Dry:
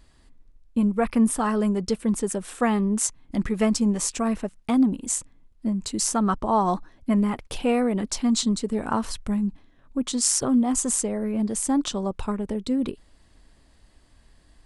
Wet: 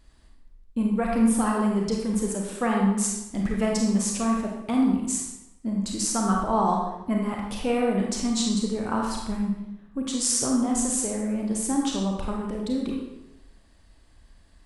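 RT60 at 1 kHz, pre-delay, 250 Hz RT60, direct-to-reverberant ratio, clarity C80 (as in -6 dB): 0.90 s, 28 ms, 0.90 s, -1.0 dB, 4.5 dB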